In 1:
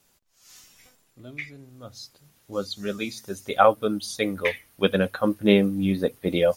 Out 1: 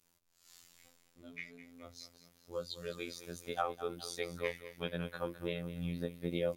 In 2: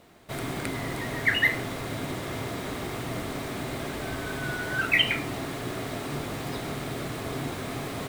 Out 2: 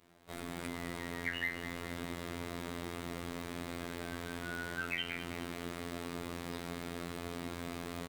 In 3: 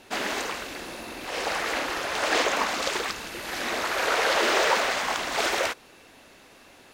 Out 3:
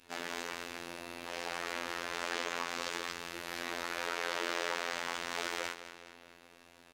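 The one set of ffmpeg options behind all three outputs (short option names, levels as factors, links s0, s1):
-af "adynamicequalizer=threshold=0.00794:dfrequency=690:dqfactor=2.3:tfrequency=690:tqfactor=2.3:attack=5:release=100:ratio=0.375:range=2.5:mode=cutabove:tftype=bell,acompressor=threshold=0.0398:ratio=2,afftfilt=real='hypot(re,im)*cos(PI*b)':imag='0':win_size=2048:overlap=0.75,aecho=1:1:209|418|627|836:0.178|0.0854|0.041|0.0197,volume=0.473"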